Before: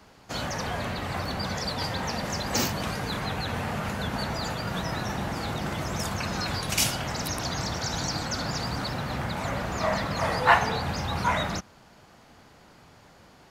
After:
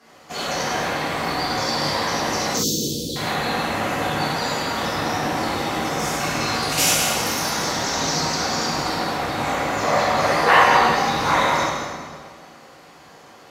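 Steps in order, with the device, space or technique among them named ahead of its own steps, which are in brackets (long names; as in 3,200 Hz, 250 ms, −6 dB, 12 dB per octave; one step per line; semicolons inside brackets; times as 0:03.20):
whispering ghost (random phases in short frames; high-pass filter 270 Hz 6 dB per octave; convolution reverb RT60 1.8 s, pre-delay 93 ms, DRR 1 dB)
0:02.52–0:03.16: Chebyshev band-stop filter 480–3,400 Hz, order 4
reverb whose tail is shaped and stops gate 130 ms flat, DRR −7 dB
level −1 dB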